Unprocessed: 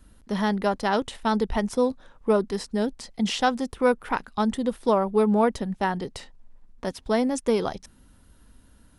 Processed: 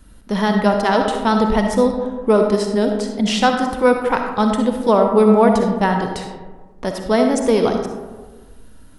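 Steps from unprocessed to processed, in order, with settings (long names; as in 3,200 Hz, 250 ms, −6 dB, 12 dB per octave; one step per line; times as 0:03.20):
comb and all-pass reverb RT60 1.4 s, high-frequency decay 0.35×, pre-delay 20 ms, DRR 3.5 dB
level +6.5 dB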